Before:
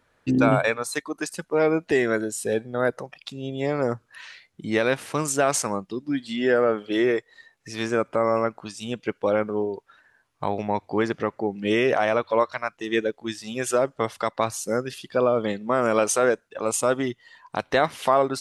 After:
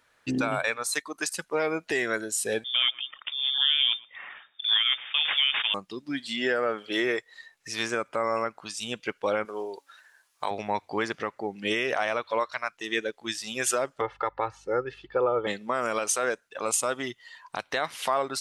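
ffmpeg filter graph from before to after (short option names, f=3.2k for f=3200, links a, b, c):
-filter_complex "[0:a]asettb=1/sr,asplit=3[a][b][c];[a]atrim=end=2.644[d];[b]atrim=start=2.64:end=5.74,asetpts=PTS-STARTPTS,afade=t=in:d=0.004:c=qsin,afade=t=out:st=3.096:d=0.004:c=qsin,acrusher=samples=9:mix=1:aa=0.000001:lfo=1:lforange=5.4:lforate=1.7,lowpass=f=3.1k:t=q:w=0.5098,lowpass=f=3.1k:t=q:w=0.6013,lowpass=f=3.1k:t=q:w=0.9,lowpass=f=3.1k:t=q:w=2.563,afreqshift=-3700,asplit=2[e][f];[f]adelay=117,lowpass=f=950:p=1,volume=-15.5dB,asplit=2[g][h];[h]adelay=117,lowpass=f=950:p=1,volume=0.31,asplit=2[i][j];[j]adelay=117,lowpass=f=950:p=1,volume=0.31[k];[e][g][i][k]amix=inputs=4:normalize=0,atrim=end_sample=136710[l];[c]atrim=start=5.736[m];[d][l]acrossfade=d=0.004:c1=hsin:c2=qsin[n];[n][m]acrossfade=d=0.004:c1=qsin:c2=hsin,asettb=1/sr,asplit=3[o][p][q];[o]atrim=end=9.454[r];[p]atrim=start=9.45:end=10.51,asetpts=PTS-STARTPTS,afade=t=in:d=0.004:c=qsin,afade=t=out:st=1.056:d=0.004:c=qsin,bass=f=250:g=-14,treble=f=4k:g=8,bandreject=f=280.2:t=h:w=4,bandreject=f=560.4:t=h:w=4,bandreject=f=840.6:t=h:w=4,bandreject=f=1.1208k:t=h:w=4,bandreject=f=1.401k:t=h:w=4,bandreject=f=1.6812k:t=h:w=4,bandreject=f=1.9614k:t=h:w=4,bandreject=f=2.2416k:t=h:w=4,bandreject=f=2.5218k:t=h:w=4,bandreject=f=2.802k:t=h:w=4,bandreject=f=3.0822k:t=h:w=4,bandreject=f=3.3624k:t=h:w=4,bandreject=f=3.6426k:t=h:w=4,bandreject=f=3.9228k:t=h:w=4,bandreject=f=4.203k:t=h:w=4,bandreject=f=4.4832k:t=h:w=4,bandreject=f=4.7634k:t=h:w=4,bandreject=f=5.0436k:t=h:w=4,bandreject=f=5.3238k:t=h:w=4,bandreject=f=5.604k:t=h:w=4,bandreject=f=5.8842k:t=h:w=4,bandreject=f=6.1644k:t=h:w=4,bandreject=f=6.4446k:t=h:w=4,bandreject=f=6.7248k:t=h:w=4,bandreject=f=7.005k:t=h:w=4,bandreject=f=7.2852k:t=h:w=4,bandreject=f=7.5654k:t=h:w=4,bandreject=f=7.8456k:t=h:w=4,bandreject=f=8.1258k:t=h:w=4,bandreject=f=8.406k:t=h:w=4,bandreject=f=8.6862k:t=h:w=4,bandreject=f=8.9664k:t=h:w=4,bandreject=f=9.2466k:t=h:w=4,bandreject=f=9.5268k:t=h:w=4[s];[q]atrim=start=10.506[t];[r][s]acrossfade=d=0.004:c1=hsin:c2=qsin[u];[u][t]acrossfade=d=0.004:c1=qsin:c2=hsin,asettb=1/sr,asplit=3[v][w][x];[v]atrim=end=14.014[y];[w]atrim=start=14.01:end=15.47,asetpts=PTS-STARTPTS,afade=t=in:d=0.004:c=qsin,afade=t=out:st=1.456:d=0.004:c=qsin,aeval=exprs='val(0)+0.00178*(sin(2*PI*50*n/s)+sin(2*PI*2*50*n/s)/2+sin(2*PI*3*50*n/s)/3+sin(2*PI*4*50*n/s)/4+sin(2*PI*5*50*n/s)/5)':c=same,lowpass=1.4k,aecho=1:1:2.3:0.73,atrim=end_sample=64386[z];[x]atrim=start=15.466[aa];[y][z]acrossfade=d=0.004:c1=hsin:c2=qsin[ab];[ab][aa]acrossfade=d=0.004:c1=qsin:c2=hsin,tiltshelf=f=970:g=-4.5,alimiter=limit=-13.5dB:level=0:latency=1:release=341,lowshelf=f=390:g=-4.5"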